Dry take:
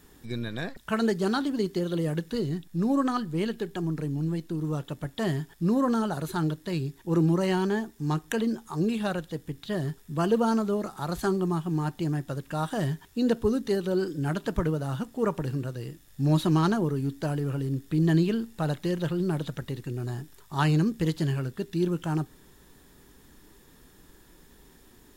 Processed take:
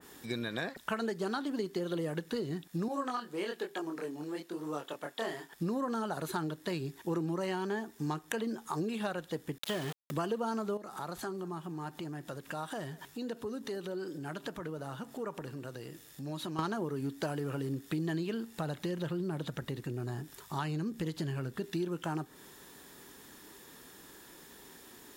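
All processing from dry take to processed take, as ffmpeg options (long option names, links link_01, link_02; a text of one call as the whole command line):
ffmpeg -i in.wav -filter_complex "[0:a]asettb=1/sr,asplit=3[link_01][link_02][link_03];[link_01]atrim=end=2.884[link_04];[link_02]atrim=start=2.88:end=5.53,asetpts=PTS-STARTPTS,afade=type=in:duration=0.004:curve=qsin,afade=type=out:start_time=2.646:duration=0.004:curve=qsin,highpass=360,flanger=delay=20:depth=7:speed=1.1[link_05];[link_03]atrim=start=5.526[link_06];[link_04][link_05]acrossfade=duration=0.004:curve1=hsin:curve2=qsin[link_07];[link_07][link_06]acrossfade=duration=0.004:curve1=qsin:curve2=hsin,asettb=1/sr,asplit=3[link_08][link_09][link_10];[link_08]atrim=end=9.584[link_11];[link_09]atrim=start=9.58:end=10.11,asetpts=PTS-STARTPTS,afade=type=in:duration=0.004:curve=qsin,afade=type=out:start_time=0.526:duration=0.004:curve=qsin,equalizer=frequency=3200:width_type=o:width=0.31:gain=10.5,aeval=exprs='val(0)*gte(abs(val(0)),0.02)':channel_layout=same[link_12];[link_10]atrim=start=10.106[link_13];[link_11][link_12]acrossfade=duration=0.004:curve1=hsin:curve2=qsin[link_14];[link_14][link_13]acrossfade=duration=0.004:curve1=qsin:curve2=hsin,asettb=1/sr,asplit=3[link_15][link_16][link_17];[link_15]atrim=end=10.774[link_18];[link_16]atrim=start=10.77:end=16.59,asetpts=PTS-STARTPTS,afade=type=in:duration=0.004:curve=qsin,afade=type=out:start_time=5.816:duration=0.004:curve=qsin,acompressor=threshold=-41dB:ratio=3:attack=3.2:release=140:knee=1:detection=peak,aecho=1:1:197:0.0794,atrim=end_sample=256662[link_19];[link_17]atrim=start=16.586[link_20];[link_18][link_19]acrossfade=duration=0.004:curve1=hsin:curve2=qsin[link_21];[link_21][link_20]acrossfade=duration=0.004:curve1=qsin:curve2=hsin,asettb=1/sr,asplit=3[link_22][link_23][link_24];[link_22]atrim=end=18.574[link_25];[link_23]atrim=start=18.57:end=21.64,asetpts=PTS-STARTPTS,afade=type=in:duration=0.004:curve=qsin,afade=type=out:start_time=3.066:duration=0.004:curve=qsin,lowshelf=frequency=220:gain=8.5,acompressor=threshold=-40dB:ratio=1.5:attack=3.2:release=140:knee=1:detection=peak[link_26];[link_24]atrim=start=21.636[link_27];[link_25][link_26]acrossfade=duration=0.004:curve1=hsin:curve2=qsin[link_28];[link_28][link_27]acrossfade=duration=0.004:curve1=qsin:curve2=hsin,highpass=frequency=410:poles=1,acompressor=threshold=-37dB:ratio=6,adynamicequalizer=threshold=0.00112:dfrequency=2200:dqfactor=0.7:tfrequency=2200:tqfactor=0.7:attack=5:release=100:ratio=0.375:range=2:mode=cutabove:tftype=highshelf,volume=5.5dB" out.wav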